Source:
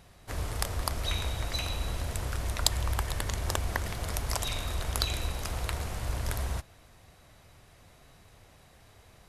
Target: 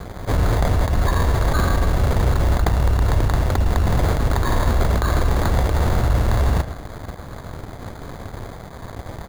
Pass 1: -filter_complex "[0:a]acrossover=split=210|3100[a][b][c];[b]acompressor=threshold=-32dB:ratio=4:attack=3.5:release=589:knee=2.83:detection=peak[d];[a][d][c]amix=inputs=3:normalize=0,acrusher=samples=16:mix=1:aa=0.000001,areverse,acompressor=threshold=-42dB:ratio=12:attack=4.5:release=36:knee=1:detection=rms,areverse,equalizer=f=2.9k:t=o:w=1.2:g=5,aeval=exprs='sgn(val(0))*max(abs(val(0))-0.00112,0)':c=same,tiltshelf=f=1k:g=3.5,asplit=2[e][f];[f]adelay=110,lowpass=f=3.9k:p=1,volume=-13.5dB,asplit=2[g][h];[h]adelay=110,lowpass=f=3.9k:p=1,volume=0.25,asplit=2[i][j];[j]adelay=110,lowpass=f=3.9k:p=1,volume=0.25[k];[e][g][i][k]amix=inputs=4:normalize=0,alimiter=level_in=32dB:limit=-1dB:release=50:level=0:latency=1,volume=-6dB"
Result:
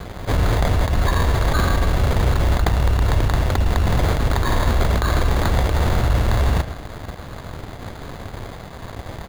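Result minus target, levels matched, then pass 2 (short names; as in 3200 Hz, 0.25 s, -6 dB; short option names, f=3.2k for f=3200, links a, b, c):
4000 Hz band +3.5 dB
-filter_complex "[0:a]acrossover=split=210|3100[a][b][c];[b]acompressor=threshold=-32dB:ratio=4:attack=3.5:release=589:knee=2.83:detection=peak[d];[a][d][c]amix=inputs=3:normalize=0,acrusher=samples=16:mix=1:aa=0.000001,areverse,acompressor=threshold=-42dB:ratio=12:attack=4.5:release=36:knee=1:detection=rms,areverse,aeval=exprs='sgn(val(0))*max(abs(val(0))-0.00112,0)':c=same,tiltshelf=f=1k:g=3.5,asplit=2[e][f];[f]adelay=110,lowpass=f=3.9k:p=1,volume=-13.5dB,asplit=2[g][h];[h]adelay=110,lowpass=f=3.9k:p=1,volume=0.25,asplit=2[i][j];[j]adelay=110,lowpass=f=3.9k:p=1,volume=0.25[k];[e][g][i][k]amix=inputs=4:normalize=0,alimiter=level_in=32dB:limit=-1dB:release=50:level=0:latency=1,volume=-6dB"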